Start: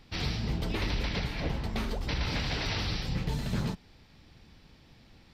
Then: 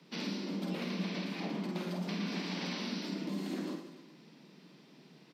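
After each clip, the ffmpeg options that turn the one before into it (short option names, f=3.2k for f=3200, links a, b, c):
-filter_complex "[0:a]afreqshift=140,acrossover=split=150[a][b];[b]acompressor=threshold=-34dB:ratio=6[c];[a][c]amix=inputs=2:normalize=0,aecho=1:1:50|112.5|190.6|288.3|410.4:0.631|0.398|0.251|0.158|0.1,volume=-4dB"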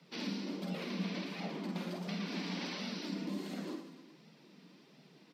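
-af "flanger=delay=1.4:depth=2.9:regen=-36:speed=1.4:shape=sinusoidal,volume=2dB"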